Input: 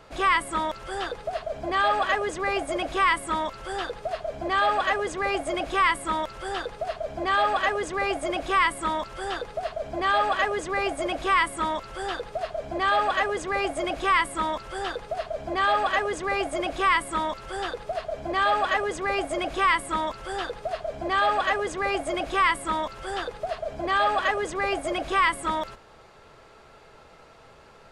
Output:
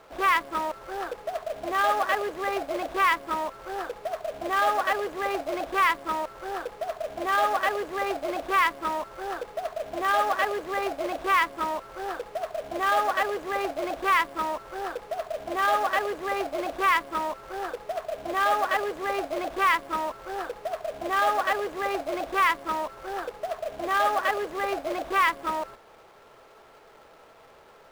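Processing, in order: Wiener smoothing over 15 samples; companded quantiser 4-bit; tone controls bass -11 dB, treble -8 dB

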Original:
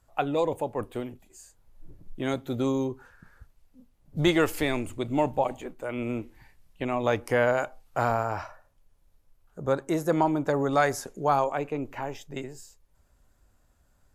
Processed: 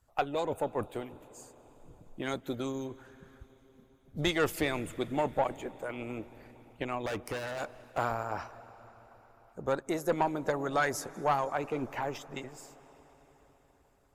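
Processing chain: 7.06–7.98 overloaded stage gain 27 dB; 11.63–12.18 sample leveller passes 1; on a send at -16 dB: reverb RT60 4.8 s, pre-delay 0.12 s; on the sum: harmonic-percussive split harmonic -10 dB; tube stage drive 18 dB, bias 0.3

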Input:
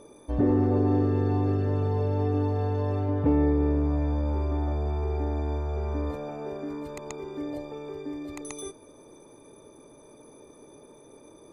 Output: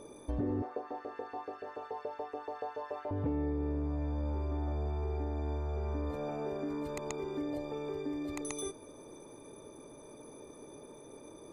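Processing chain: compressor 4:1, threshold -33 dBFS, peak gain reduction 12 dB; 0.62–3.11 LFO high-pass saw up 7 Hz 490–1800 Hz

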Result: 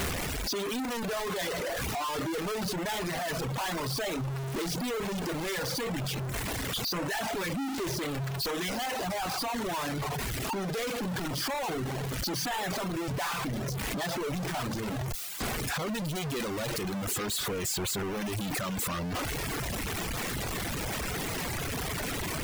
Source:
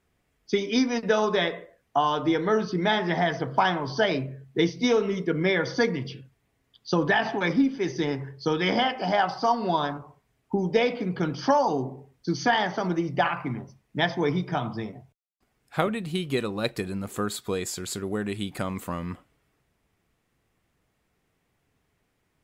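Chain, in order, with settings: infinite clipping; reverb removal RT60 1.1 s; gain -3 dB

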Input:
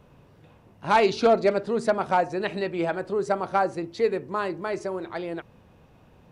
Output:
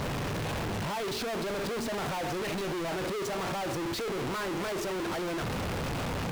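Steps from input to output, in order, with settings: infinite clipping; high shelf 6600 Hz -7.5 dB; gain -6 dB

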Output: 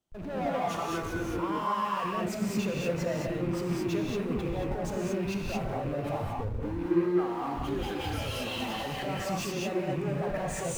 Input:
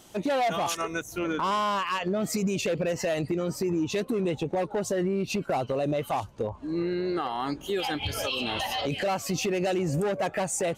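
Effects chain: rattling part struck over -30 dBFS, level -27 dBFS; in parallel at -2 dB: Schmitt trigger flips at -42 dBFS; on the sum: high shelf 3100 Hz -10 dB; limiter -23 dBFS, peak gain reduction 5.5 dB; non-linear reverb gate 0.25 s rising, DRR -3 dB; reverse; upward compressor, threshold -31 dBFS; reverse; low shelf 150 Hz +4.5 dB; three-band expander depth 70%; gain -8.5 dB

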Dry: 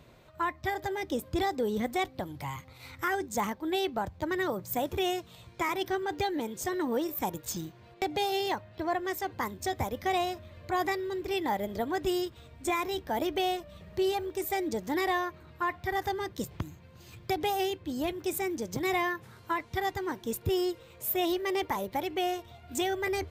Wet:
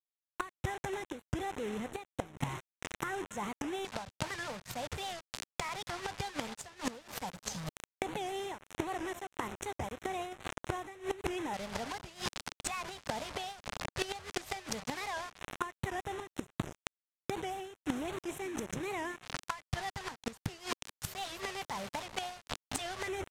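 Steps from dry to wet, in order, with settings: in parallel at +2 dB: limiter -30.5 dBFS, peak gain reduction 10.5 dB; on the sum: split-band echo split 420 Hz, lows 0.578 s, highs 0.265 s, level -14 dB; dynamic EQ 150 Hz, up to +6 dB, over -55 dBFS, Q 4.9; bit-crush 5-bit; LFO notch square 0.13 Hz 340–4700 Hz; flipped gate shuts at -21 dBFS, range -27 dB; reverse; compressor 10:1, threshold -50 dBFS, peak gain reduction 23 dB; reverse; LPF 7900 Hz 12 dB/oct; record warp 78 rpm, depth 160 cents; gain +17 dB

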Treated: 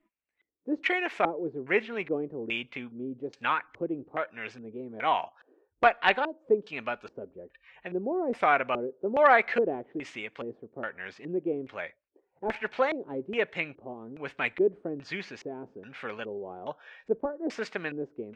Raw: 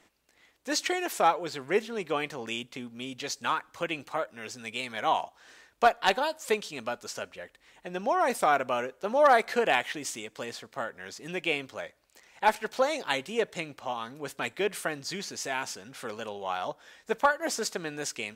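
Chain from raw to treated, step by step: spectral noise reduction 23 dB; LFO low-pass square 1.2 Hz 380–2300 Hz; gain -1 dB

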